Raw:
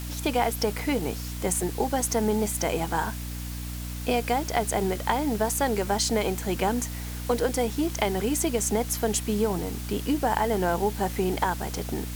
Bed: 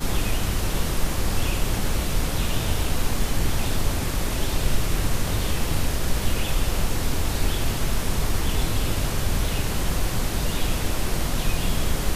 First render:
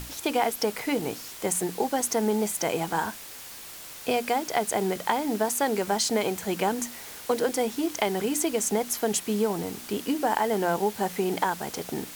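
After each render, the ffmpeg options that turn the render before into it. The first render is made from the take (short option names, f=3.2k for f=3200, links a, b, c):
-af "bandreject=f=60:t=h:w=6,bandreject=f=120:t=h:w=6,bandreject=f=180:t=h:w=6,bandreject=f=240:t=h:w=6,bandreject=f=300:t=h:w=6"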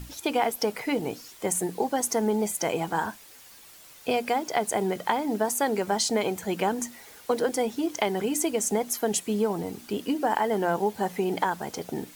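-af "afftdn=nr=9:nf=-42"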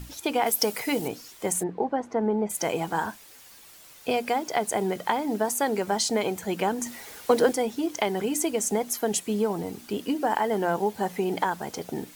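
-filter_complex "[0:a]asettb=1/sr,asplit=3[a][b][c];[a]atrim=end=0.464[d];[b]atrim=start=0.46:end=1.08,asetpts=PTS-STARTPTS,afade=t=in:d=0.004:c=qsin,afade=t=out:st=0.616:d=0.004:c=qsin,highshelf=f=4.7k:g=11.5[e];[c]atrim=start=1.076[f];[d][e]acrossfade=d=0.004:c1=hsin:c2=qsin[g];[g][f]acrossfade=d=0.004:c1=qsin:c2=hsin,asplit=3[h][i][j];[h]afade=t=out:st=1.62:d=0.02[k];[i]lowpass=1.6k,afade=t=in:st=1.62:d=0.02,afade=t=out:st=2.49:d=0.02[l];[j]afade=t=in:st=2.49:d=0.02[m];[k][l][m]amix=inputs=3:normalize=0,asettb=1/sr,asplit=3[n][o][p];[n]atrim=end=6.864[q];[o]atrim=start=6.86:end=7.53,asetpts=PTS-STARTPTS,afade=t=in:d=0.004:c=qsin,afade=t=out:st=0.666:d=0.004:c=qsin,acontrast=31[r];[p]atrim=start=7.526[s];[q][r]acrossfade=d=0.004:c1=hsin:c2=qsin[t];[t][s]acrossfade=d=0.004:c1=qsin:c2=hsin"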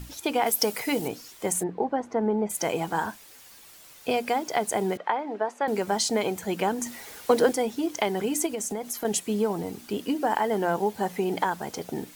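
-filter_complex "[0:a]asettb=1/sr,asplit=3[a][b][c];[a]atrim=end=4.974[d];[b]atrim=start=4.97:end=5.68,asetpts=PTS-STARTPTS,afade=t=in:d=0.004:c=qsin,afade=t=out:st=0.706:d=0.004:c=qsin,highpass=420,lowpass=2.2k[e];[c]atrim=start=5.676[f];[d][e]acrossfade=d=0.004:c1=hsin:c2=qsin[g];[g][f]acrossfade=d=0.004:c1=qsin:c2=hsin,asettb=1/sr,asplit=3[h][i][j];[h]atrim=end=8.464[k];[i]atrim=start=8.46:end=9.05,asetpts=PTS-STARTPTS,afade=t=in:d=0.004:c=qsin,afade=t=out:st=0.586:d=0.004:c=qsin,acompressor=threshold=-27dB:ratio=6:attack=3.2:release=140:knee=1:detection=peak[l];[j]atrim=start=9.046[m];[k][l]acrossfade=d=0.004:c1=hsin:c2=qsin[n];[n][m]acrossfade=d=0.004:c1=qsin:c2=hsin"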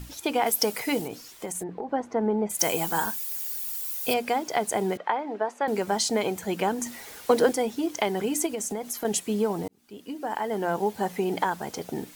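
-filter_complex "[0:a]asettb=1/sr,asplit=3[a][b][c];[a]atrim=end=1.014[d];[b]atrim=start=1.01:end=1.89,asetpts=PTS-STARTPTS,afade=t=in:d=0.004:c=qsin,afade=t=out:st=0.876:d=0.004:c=qsin,acompressor=threshold=-29dB:ratio=6:attack=3.2:release=140:knee=1:detection=peak[e];[c]atrim=start=1.886[f];[d][e]acrossfade=d=0.004:c1=hsin:c2=qsin[g];[g][f]acrossfade=d=0.004:c1=qsin:c2=hsin,asettb=1/sr,asplit=3[h][i][j];[h]atrim=end=2.594[k];[i]atrim=start=2.59:end=4.14,asetpts=PTS-STARTPTS,afade=t=in:d=0.004:c=qsin,afade=t=out:st=1.546:d=0.004:c=qsin,aemphasis=mode=production:type=75fm[l];[j]atrim=start=4.136[m];[k][l]acrossfade=d=0.004:c1=hsin:c2=qsin[n];[n][m]acrossfade=d=0.004:c1=qsin:c2=hsin,asplit=2[o][p];[o]atrim=end=9.68,asetpts=PTS-STARTPTS,afade=t=out:st=9.676:d=0.004:c=hsin[q];[p]atrim=start=9.68,asetpts=PTS-STARTPTS,afade=t=in:d=1.21[r];[q][r]concat=n=2:v=0:a=1"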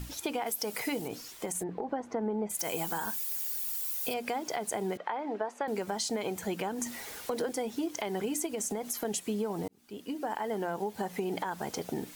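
-af "alimiter=limit=-17dB:level=0:latency=1:release=149,acompressor=threshold=-31dB:ratio=3"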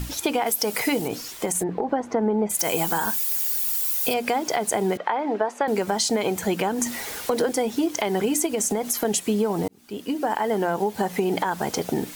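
-af "volume=10dB"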